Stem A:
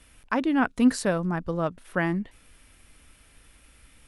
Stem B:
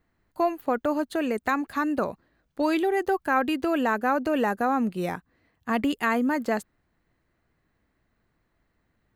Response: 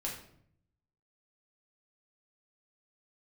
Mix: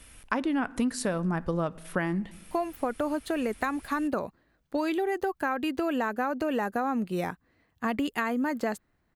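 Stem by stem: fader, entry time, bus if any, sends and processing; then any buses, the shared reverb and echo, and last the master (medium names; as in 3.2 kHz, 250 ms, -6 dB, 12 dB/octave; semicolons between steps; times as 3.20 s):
+2.0 dB, 0.00 s, send -19 dB, treble shelf 8.5 kHz +6 dB
-0.5 dB, 2.15 s, no send, none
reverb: on, RT60 0.65 s, pre-delay 5 ms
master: compression 12:1, threshold -24 dBFS, peak gain reduction 13 dB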